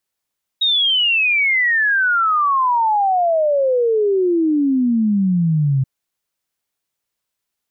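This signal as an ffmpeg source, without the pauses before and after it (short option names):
-f lavfi -i "aevalsrc='0.224*clip(min(t,5.23-t)/0.01,0,1)*sin(2*PI*3800*5.23/log(130/3800)*(exp(log(130/3800)*t/5.23)-1))':d=5.23:s=44100"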